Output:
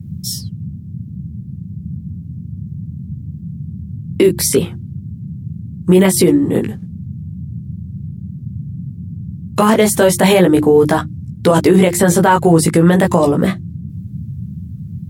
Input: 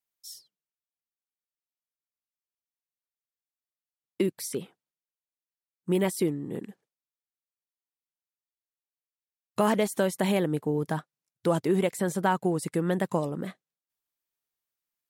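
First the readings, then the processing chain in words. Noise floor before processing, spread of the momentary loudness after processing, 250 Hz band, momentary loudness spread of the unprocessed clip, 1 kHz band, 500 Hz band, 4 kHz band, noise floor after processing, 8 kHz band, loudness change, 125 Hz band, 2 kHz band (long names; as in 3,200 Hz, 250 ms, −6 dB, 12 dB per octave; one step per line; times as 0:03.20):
below −85 dBFS, 18 LU, +16.0 dB, 14 LU, +14.5 dB, +15.5 dB, +17.0 dB, −32 dBFS, +19.0 dB, +15.5 dB, +17.5 dB, +15.0 dB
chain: chorus effect 0.36 Hz, delay 15.5 ms, depth 2.8 ms
mains-hum notches 50/100/150/200/250/300/350 Hz
noise in a band 78–190 Hz −50 dBFS
boost into a limiter +24 dB
level −1 dB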